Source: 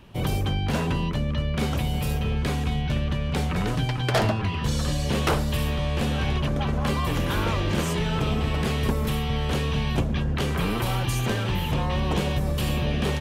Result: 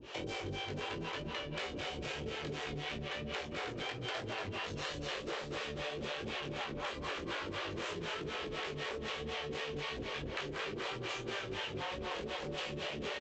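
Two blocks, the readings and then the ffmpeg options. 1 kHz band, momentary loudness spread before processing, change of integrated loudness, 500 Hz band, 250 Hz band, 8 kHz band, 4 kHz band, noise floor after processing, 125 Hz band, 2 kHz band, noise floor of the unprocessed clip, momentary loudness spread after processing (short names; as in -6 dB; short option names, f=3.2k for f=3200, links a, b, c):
-12.0 dB, 2 LU, -14.0 dB, -10.5 dB, -17.5 dB, -14.5 dB, -8.5 dB, -44 dBFS, -22.5 dB, -8.0 dB, -27 dBFS, 1 LU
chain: -filter_complex "[0:a]highpass=f=120:p=1,aresample=16000,asoftclip=type=tanh:threshold=-30dB,aresample=44100,equalizer=f=770:t=o:w=1.5:g=-7.5,acrossover=split=440[a][b];[a]aeval=exprs='val(0)*(1-1/2+1/2*cos(2*PI*4*n/s))':c=same[c];[b]aeval=exprs='val(0)*(1-1/2-1/2*cos(2*PI*4*n/s))':c=same[d];[c][d]amix=inputs=2:normalize=0,flanger=delay=17.5:depth=3.6:speed=3,asplit=2[e][f];[f]adelay=236,lowpass=f=4.6k:p=1,volume=-4.5dB,asplit=2[g][h];[h]adelay=236,lowpass=f=4.6k:p=1,volume=0.44,asplit=2[i][j];[j]adelay=236,lowpass=f=4.6k:p=1,volume=0.44,asplit=2[k][l];[l]adelay=236,lowpass=f=4.6k:p=1,volume=0.44,asplit=2[m][n];[n]adelay=236,lowpass=f=4.6k:p=1,volume=0.44[o];[g][i][k][m][o]amix=inputs=5:normalize=0[p];[e][p]amix=inputs=2:normalize=0,acrossover=split=4000[q][r];[r]acompressor=threshold=-59dB:ratio=4:attack=1:release=60[s];[q][s]amix=inputs=2:normalize=0,lowshelf=f=290:t=q:w=1.5:g=-12.5,acompressor=threshold=-53dB:ratio=5,volume=15dB"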